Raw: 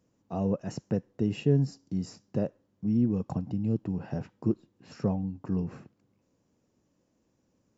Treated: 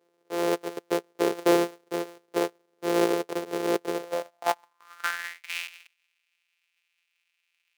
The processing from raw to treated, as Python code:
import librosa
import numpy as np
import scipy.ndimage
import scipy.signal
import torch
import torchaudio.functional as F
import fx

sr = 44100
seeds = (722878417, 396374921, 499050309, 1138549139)

y = np.r_[np.sort(x[:len(x) // 256 * 256].reshape(-1, 256), axis=1).ravel(), x[len(x) // 256 * 256:]]
y = fx.filter_sweep_highpass(y, sr, from_hz=420.0, to_hz=2500.0, start_s=3.97, end_s=5.54, q=5.0)